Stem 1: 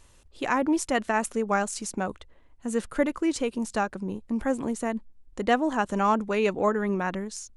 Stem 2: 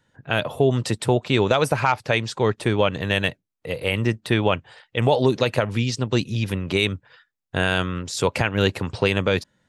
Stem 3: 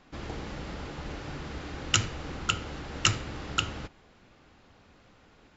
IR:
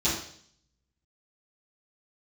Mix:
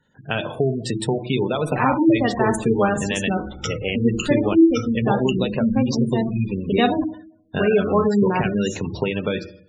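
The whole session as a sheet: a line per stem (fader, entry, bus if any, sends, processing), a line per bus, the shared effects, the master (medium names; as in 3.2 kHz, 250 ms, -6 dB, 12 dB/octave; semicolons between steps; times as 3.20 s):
+2.5 dB, 1.30 s, muted 7.04–7.54 s, send -15 dB, none
+0.5 dB, 0.00 s, send -17.5 dB, compression 4:1, threshold -20 dBFS, peak gain reduction 6.5 dB; de-hum 61.22 Hz, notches 3
-8.0 dB, 1.70 s, send -13 dB, drifting ripple filter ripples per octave 1.5, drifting -0.84 Hz, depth 15 dB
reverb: on, RT60 0.60 s, pre-delay 3 ms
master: spectral gate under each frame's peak -20 dB strong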